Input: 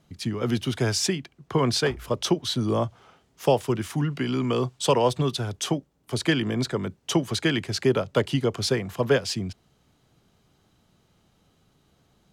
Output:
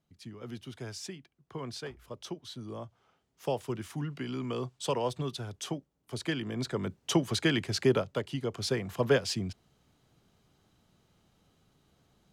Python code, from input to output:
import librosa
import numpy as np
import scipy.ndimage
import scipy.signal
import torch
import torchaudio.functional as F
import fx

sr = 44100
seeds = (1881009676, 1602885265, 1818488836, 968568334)

y = fx.gain(x, sr, db=fx.line((2.86, -17.0), (3.66, -10.0), (6.48, -10.0), (6.89, -3.5), (7.97, -3.5), (8.23, -12.0), (8.94, -4.0)))